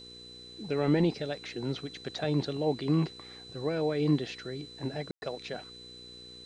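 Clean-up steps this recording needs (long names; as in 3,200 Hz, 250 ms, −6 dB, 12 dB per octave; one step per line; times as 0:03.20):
hum removal 60.9 Hz, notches 8
notch filter 4,000 Hz, Q 30
ambience match 0:05.11–0:05.22
downward expander −41 dBFS, range −21 dB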